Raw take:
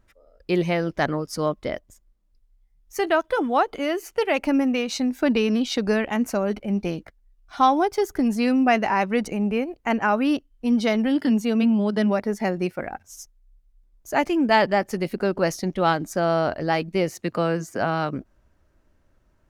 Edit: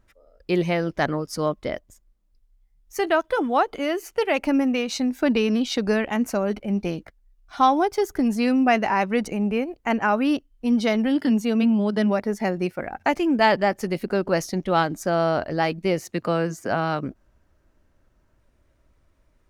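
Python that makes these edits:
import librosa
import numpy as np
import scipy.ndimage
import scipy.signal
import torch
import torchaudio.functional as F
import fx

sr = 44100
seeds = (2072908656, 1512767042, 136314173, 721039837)

y = fx.edit(x, sr, fx.cut(start_s=13.06, length_s=1.1), tone=tone)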